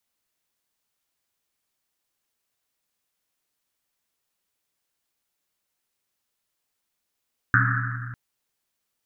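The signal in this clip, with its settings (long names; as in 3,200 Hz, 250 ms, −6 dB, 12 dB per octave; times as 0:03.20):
drum after Risset length 0.60 s, pitch 120 Hz, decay 2.78 s, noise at 1,500 Hz, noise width 520 Hz, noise 50%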